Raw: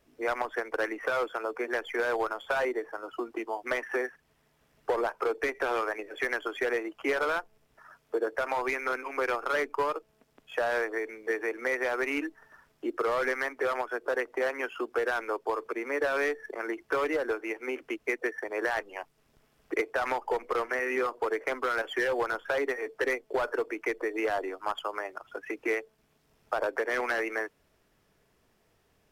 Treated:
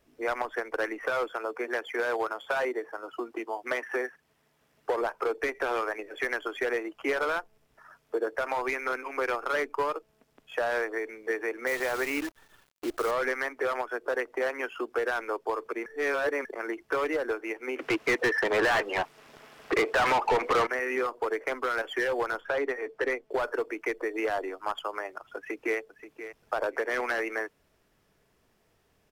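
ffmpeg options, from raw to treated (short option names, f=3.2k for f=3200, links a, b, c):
-filter_complex "[0:a]asettb=1/sr,asplit=3[a][b][c];[a]atrim=end=1.324[d];[b]atrim=start=1.32:end=5.02,asetpts=PTS-STARTPTS,afade=t=in:d=0.004:c=qsin,afade=t=out:st=3.696:d=0.004:c=qsin,highpass=f=130:p=1[e];[c]atrim=start=5.016[f];[d][e]acrossfade=d=0.004:c1=hsin:c2=qsin[g];[g][f]acrossfade=d=0.004:c1=qsin:c2=hsin,asettb=1/sr,asplit=3[h][i][j];[h]atrim=end=11.674[k];[i]atrim=start=11.67:end=13.11,asetpts=PTS-STARTPTS,afade=t=in:d=0.004:c=qsin,afade=t=out:st=1.436:d=0.004:c=qsin,acrusher=bits=7:dc=4:mix=0:aa=0.000001[l];[j]atrim=start=13.106[m];[k][l]acrossfade=d=0.004:c1=hsin:c2=qsin[n];[n][m]acrossfade=d=0.004:c1=qsin:c2=hsin,asettb=1/sr,asplit=3[o][p][q];[o]atrim=end=17.794[r];[p]atrim=start=17.79:end=20.67,asetpts=PTS-STARTPTS,afade=t=in:d=0.004:c=qsin,afade=t=out:st=2.876:d=0.004:c=qsin,asplit=2[s][t];[t]highpass=f=720:p=1,volume=27dB,asoftclip=type=tanh:threshold=-17dB[u];[s][u]amix=inputs=2:normalize=0,lowpass=f=2.8k:p=1,volume=-6dB[v];[q]atrim=start=20.666[w];[r][v]acrossfade=d=0.004:c1=hsin:c2=qsin[x];[x][w]acrossfade=d=0.004:c1=qsin:c2=hsin,asettb=1/sr,asplit=3[y][z][aa];[y]atrim=end=22.414[ab];[z]atrim=start=22.41:end=23.31,asetpts=PTS-STARTPTS,afade=t=in:d=0.004:c=qsin,afade=t=out:st=0.896:d=0.004:c=qsin,aemphasis=mode=reproduction:type=cd[ac];[aa]atrim=start=23.306[ad];[ab][ac]acrossfade=d=0.004:c1=hsin:c2=qsin[ae];[ae][ad]acrossfade=d=0.004:c1=qsin:c2=hsin,asplit=2[af][ag];[ag]afade=t=in:st=25.36:d=0.01,afade=t=out:st=25.79:d=0.01,aecho=0:1:530|1060:0.251189|0.0376783[ah];[af][ah]amix=inputs=2:normalize=0,asplit=3[ai][aj][ak];[ai]atrim=end=15.862[al];[aj]atrim=start=15.858:end=16.452,asetpts=PTS-STARTPTS,areverse[am];[ak]atrim=start=16.448[an];[al][am]acrossfade=d=0.004:c1=hsin:c2=hsin[ao];[ao][an]acrossfade=d=0.004:c1=hsin:c2=hsin"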